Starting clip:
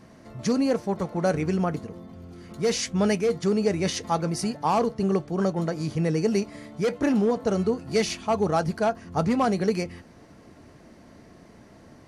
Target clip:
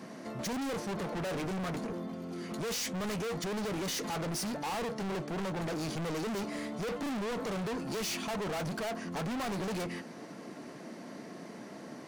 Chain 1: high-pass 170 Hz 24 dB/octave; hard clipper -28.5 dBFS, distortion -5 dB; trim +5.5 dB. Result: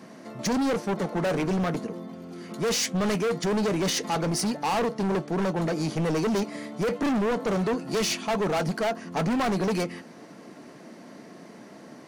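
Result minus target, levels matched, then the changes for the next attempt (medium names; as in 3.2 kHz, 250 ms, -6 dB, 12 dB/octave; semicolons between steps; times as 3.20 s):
hard clipper: distortion -4 dB
change: hard clipper -39.5 dBFS, distortion -1 dB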